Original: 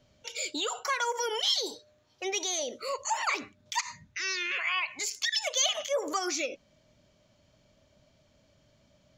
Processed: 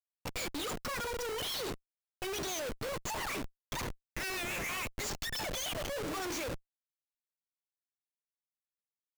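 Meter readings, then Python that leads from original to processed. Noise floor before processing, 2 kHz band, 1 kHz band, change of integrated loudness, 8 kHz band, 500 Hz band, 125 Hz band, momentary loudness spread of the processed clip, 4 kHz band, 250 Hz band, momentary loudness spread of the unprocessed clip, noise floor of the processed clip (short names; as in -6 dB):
-66 dBFS, -6.5 dB, -7.5 dB, -6.5 dB, -8.5 dB, -4.5 dB, n/a, 6 LU, -9.0 dB, 0.0 dB, 9 LU, under -85 dBFS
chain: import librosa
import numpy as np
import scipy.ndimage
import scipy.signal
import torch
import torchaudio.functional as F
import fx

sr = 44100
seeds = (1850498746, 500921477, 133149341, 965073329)

y = fx.hum_notches(x, sr, base_hz=50, count=9)
y = fx.rotary(y, sr, hz=7.0)
y = fx.schmitt(y, sr, flips_db=-39.5)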